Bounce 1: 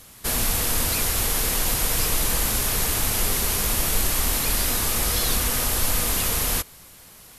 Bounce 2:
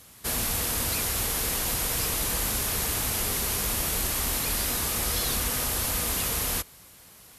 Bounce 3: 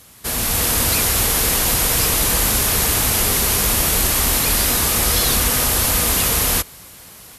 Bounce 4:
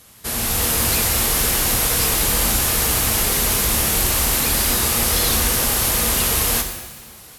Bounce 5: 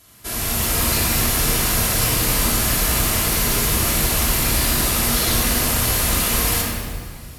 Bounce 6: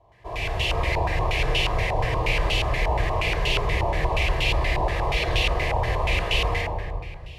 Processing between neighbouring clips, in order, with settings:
high-pass filter 40 Hz; level −4 dB
automatic gain control gain up to 5.5 dB; level +5 dB
reverb with rising layers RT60 1.1 s, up +7 semitones, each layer −8 dB, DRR 5 dB; level −2.5 dB
rectangular room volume 2,000 cubic metres, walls mixed, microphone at 3 metres; level −5 dB
phaser with its sweep stopped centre 580 Hz, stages 4; low-pass on a step sequencer 8.4 Hz 920–2,800 Hz

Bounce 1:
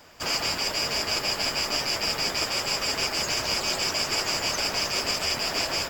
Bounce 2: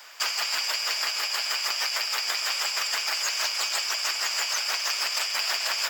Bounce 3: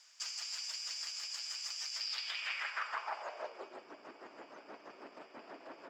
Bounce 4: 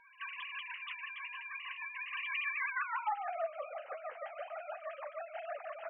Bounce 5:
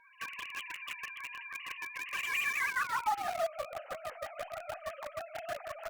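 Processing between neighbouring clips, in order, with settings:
high-pass filter 1,200 Hz 12 dB per octave; compressor whose output falls as the input rises −32 dBFS, ratio −1; level +4 dB
spectral tilt −3.5 dB per octave; band-pass filter sweep 6,400 Hz → 280 Hz, 0:01.91–0:03.82
three sine waves on the formant tracks; downward compressor 2.5 to 1, threshold −46 dBFS, peak gain reduction 11 dB; flanger 0.37 Hz, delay 4.2 ms, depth 5.5 ms, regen −41%; level +12.5 dB
in parallel at −5.5 dB: bit-depth reduction 6 bits, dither none; on the sum: Opus 64 kbit/s 48,000 Hz

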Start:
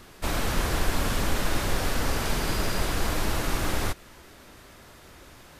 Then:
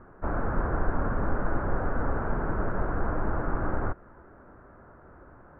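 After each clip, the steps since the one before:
elliptic low-pass filter 1,500 Hz, stop band 80 dB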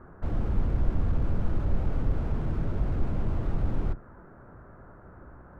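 sub-octave generator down 1 octave, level +3 dB
slew-rate limiting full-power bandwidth 7.1 Hz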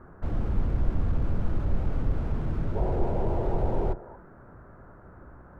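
gain on a spectral selection 0:02.76–0:04.16, 330–1,000 Hz +11 dB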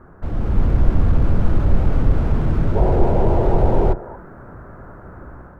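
automatic gain control gain up to 7 dB
level +4 dB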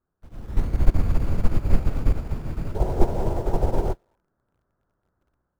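in parallel at −7.5 dB: bit reduction 5 bits
on the sum: expander for the loud parts 2.5 to 1, over −27 dBFS
level −3 dB

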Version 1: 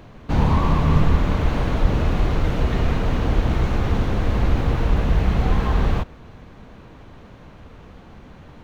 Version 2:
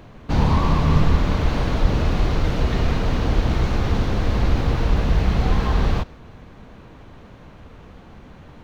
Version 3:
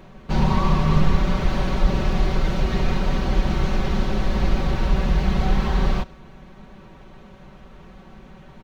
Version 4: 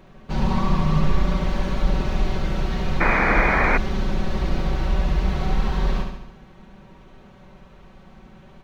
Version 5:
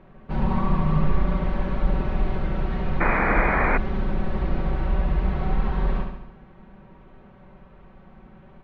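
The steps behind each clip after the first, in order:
dynamic equaliser 4,800 Hz, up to +6 dB, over −53 dBFS, Q 1.5
comb filter 5.3 ms, depth 80%; level −3 dB
flutter between parallel walls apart 12 metres, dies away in 0.81 s; sound drawn into the spectrogram noise, 0:03.00–0:03.78, 200–2,500 Hz −16 dBFS; level −4 dB
low-pass filter 2,100 Hz 12 dB per octave; level −1.5 dB

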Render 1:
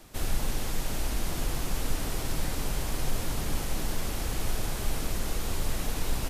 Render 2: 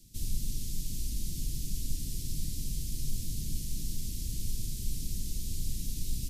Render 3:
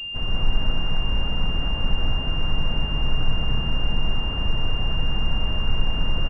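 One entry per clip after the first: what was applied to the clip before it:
Chebyshev band-stop filter 180–5,000 Hz, order 2; level −2.5 dB
loudspeakers that aren't time-aligned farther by 44 metres −1 dB, 68 metres −2 dB; switching amplifier with a slow clock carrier 2,800 Hz; level +6.5 dB

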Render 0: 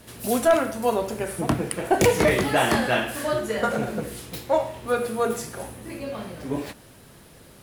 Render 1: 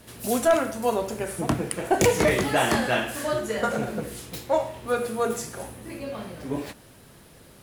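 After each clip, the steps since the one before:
dynamic equaliser 6,900 Hz, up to +4 dB, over −48 dBFS, Q 2
level −1.5 dB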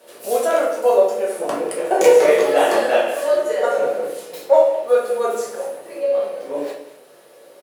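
high-pass with resonance 510 Hz, resonance Q 4.4
single-tap delay 197 ms −16 dB
rectangular room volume 98 cubic metres, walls mixed, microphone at 1.1 metres
level −3.5 dB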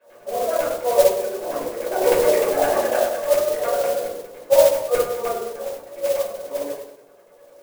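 auto-filter low-pass saw down 9.9 Hz 460–2,400 Hz
rectangular room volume 310 cubic metres, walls furnished, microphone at 5.2 metres
noise that follows the level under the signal 14 dB
level −17 dB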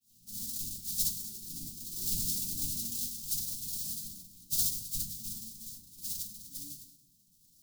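inverse Chebyshev band-stop filter 430–2,000 Hz, stop band 50 dB
level −1.5 dB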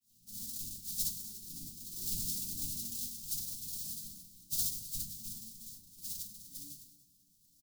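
repeating echo 297 ms, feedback 45%, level −20 dB
level −4 dB

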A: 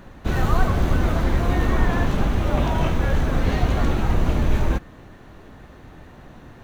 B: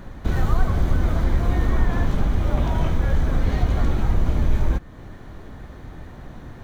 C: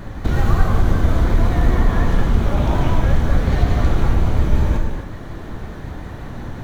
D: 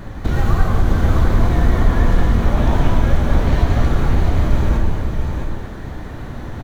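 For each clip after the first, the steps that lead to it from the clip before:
notch filter 2,700 Hz, Q 11; downward compressor 1.5 to 1, threshold −33 dBFS, peak gain reduction 8 dB; low-shelf EQ 130 Hz +7 dB; level +1.5 dB
in parallel at 0 dB: downward compressor, threshold −25 dBFS, peak gain reduction 13.5 dB; on the sum: pitch vibrato 5.5 Hz 69 cents; reverb whose tail is shaped and stops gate 300 ms flat, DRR 1 dB
single-tap delay 661 ms −5 dB

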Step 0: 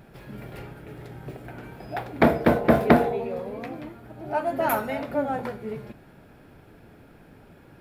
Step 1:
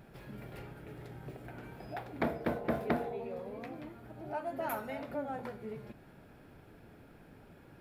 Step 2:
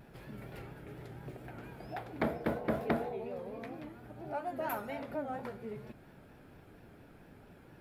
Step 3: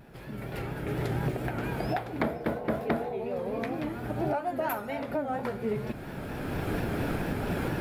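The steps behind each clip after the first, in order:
downward compressor 1.5 to 1, threshold −40 dBFS, peak gain reduction 10.5 dB; level −5.5 dB
pitch vibrato 4.3 Hz 77 cents
camcorder AGC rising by 14 dB per second; level +3 dB

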